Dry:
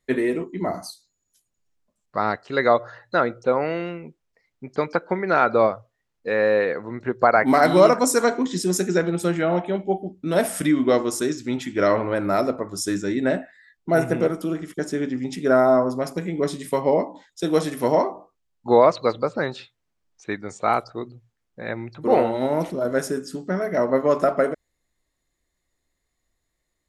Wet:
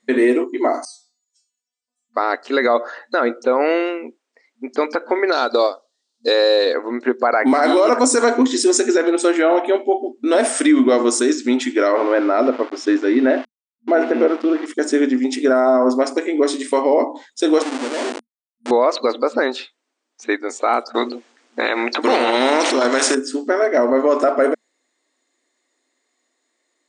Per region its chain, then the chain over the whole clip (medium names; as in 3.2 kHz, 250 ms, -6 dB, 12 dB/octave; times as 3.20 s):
0.85–2.17 s: tilt EQ +3.5 dB/octave + hum notches 60/120/180/240/300/360/420/480/540/600 Hz + inharmonic resonator 240 Hz, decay 0.56 s, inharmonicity 0.002
5.32–6.74 s: resonant high shelf 3 kHz +11.5 dB, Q 3 + transient shaper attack +2 dB, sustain -9 dB + compression 4:1, threshold -20 dBFS
11.92–14.66 s: small samples zeroed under -35.5 dBFS + distance through air 220 m
17.62–18.71 s: tilt EQ -3.5 dB/octave + compression 2.5:1, threshold -29 dBFS + Schmitt trigger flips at -32.5 dBFS
20.94–23.15 s: low-pass 7.3 kHz + spectrum-flattening compressor 2:1
whole clip: FFT band-pass 230–9500 Hz; loudness maximiser +14.5 dB; trim -5 dB